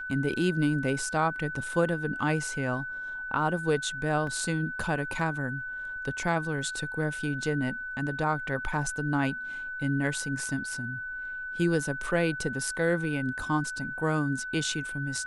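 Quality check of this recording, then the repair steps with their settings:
tone 1500 Hz -34 dBFS
4.27 gap 2.8 ms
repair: notch 1500 Hz, Q 30; interpolate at 4.27, 2.8 ms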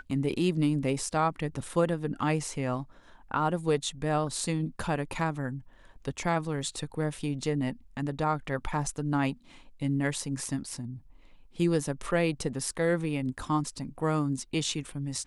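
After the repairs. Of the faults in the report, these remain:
none

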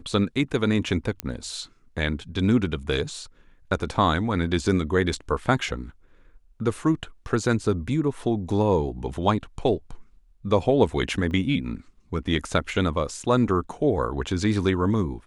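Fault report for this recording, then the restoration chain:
1.2 pop -11 dBFS
11.31 gap 2.1 ms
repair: de-click; interpolate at 11.31, 2.1 ms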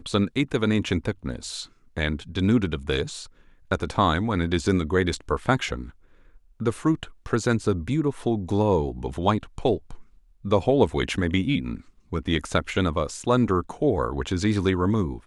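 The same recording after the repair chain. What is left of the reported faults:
none

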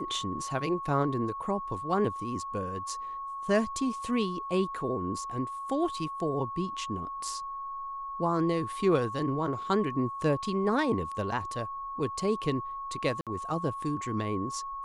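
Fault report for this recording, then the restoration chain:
tone 1100 Hz -35 dBFS
13.21–13.27 gap 57 ms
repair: notch 1100 Hz, Q 30; interpolate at 13.21, 57 ms

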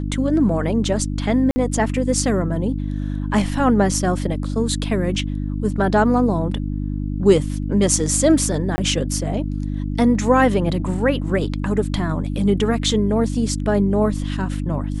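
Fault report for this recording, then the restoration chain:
hum 50 Hz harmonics 6 -24 dBFS
1.51–1.56 gap 50 ms
8.76–8.78 gap 20 ms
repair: de-hum 50 Hz, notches 6; interpolate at 1.51, 50 ms; interpolate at 8.76, 20 ms

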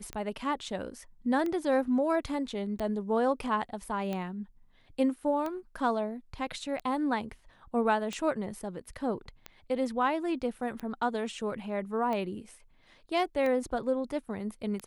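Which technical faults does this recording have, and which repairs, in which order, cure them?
tick 45 rpm -22 dBFS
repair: de-click

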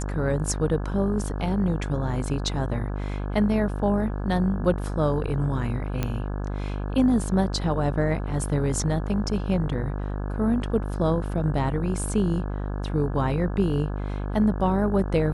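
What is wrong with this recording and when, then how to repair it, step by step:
buzz 50 Hz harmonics 34 -29 dBFS
6.03 pop -12 dBFS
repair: de-click; de-hum 50 Hz, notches 34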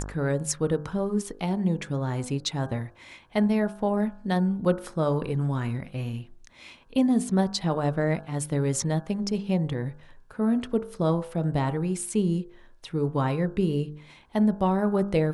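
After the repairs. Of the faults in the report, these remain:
none

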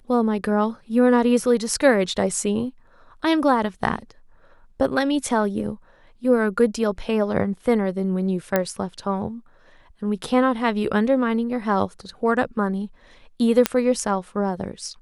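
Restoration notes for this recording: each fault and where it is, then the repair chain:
8.56 pop -6 dBFS
13.66 pop -2 dBFS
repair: de-click

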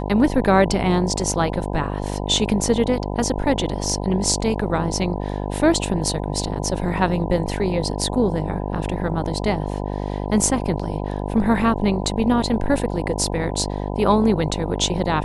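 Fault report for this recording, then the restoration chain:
buzz 50 Hz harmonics 20 -26 dBFS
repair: de-hum 50 Hz, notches 20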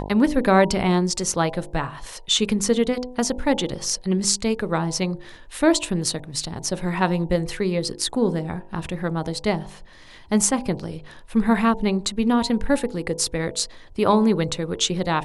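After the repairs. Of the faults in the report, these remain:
none

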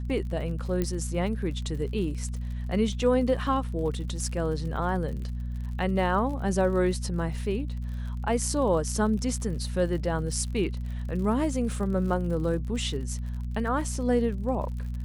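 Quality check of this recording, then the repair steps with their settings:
crackle 57/s -37 dBFS
hum 60 Hz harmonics 4 -32 dBFS
0.82 pop -15 dBFS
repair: de-click; de-hum 60 Hz, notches 4

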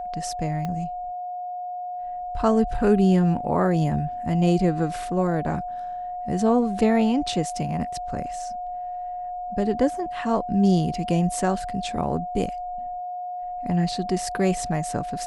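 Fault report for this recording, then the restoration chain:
tone 720 Hz -29 dBFS
0.65 pop -17 dBFS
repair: de-click; notch 720 Hz, Q 30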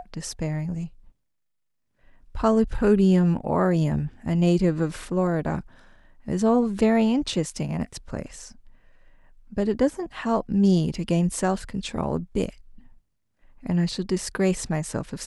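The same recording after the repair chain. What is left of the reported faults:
0.65 pop

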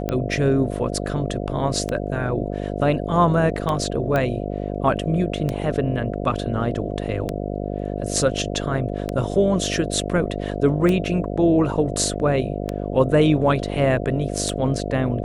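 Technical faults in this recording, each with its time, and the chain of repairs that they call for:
buzz 50 Hz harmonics 14 -27 dBFS
tick 33 1/3 rpm -11 dBFS
4.16 pop -11 dBFS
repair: de-click; de-hum 50 Hz, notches 14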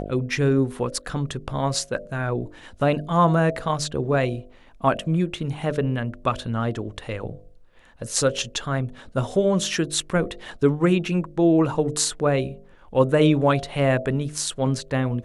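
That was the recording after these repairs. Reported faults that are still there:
none

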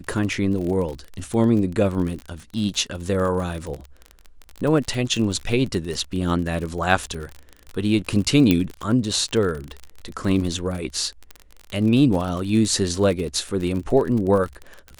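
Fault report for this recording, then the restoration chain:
crackle 41/s -27 dBFS
8.51 pop -5 dBFS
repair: de-click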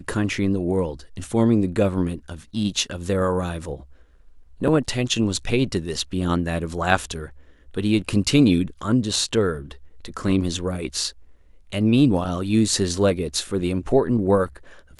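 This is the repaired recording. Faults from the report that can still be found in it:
none

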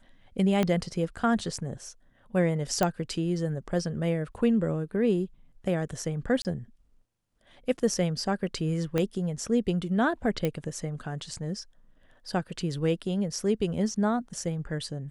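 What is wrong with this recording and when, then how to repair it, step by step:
0.63 pop -13 dBFS
2.83 pop -11 dBFS
6.42–6.45 gap 29 ms
8.98 pop -14 dBFS
10.45 pop -15 dBFS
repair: de-click; interpolate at 6.42, 29 ms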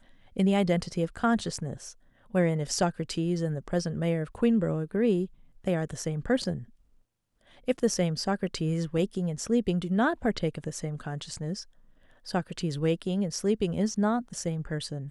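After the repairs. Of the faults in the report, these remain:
0.63 pop
8.98 pop

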